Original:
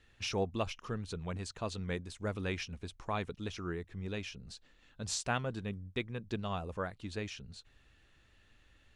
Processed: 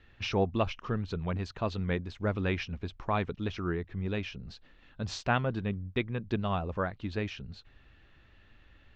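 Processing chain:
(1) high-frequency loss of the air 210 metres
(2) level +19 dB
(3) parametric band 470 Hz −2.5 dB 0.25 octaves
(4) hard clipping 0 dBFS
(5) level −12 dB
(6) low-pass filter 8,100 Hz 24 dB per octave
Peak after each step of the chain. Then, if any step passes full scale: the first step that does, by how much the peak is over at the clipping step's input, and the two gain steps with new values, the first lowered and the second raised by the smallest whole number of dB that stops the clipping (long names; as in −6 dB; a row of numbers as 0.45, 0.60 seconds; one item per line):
−20.5, −1.5, −2.0, −2.0, −14.0, −14.0 dBFS
no step passes full scale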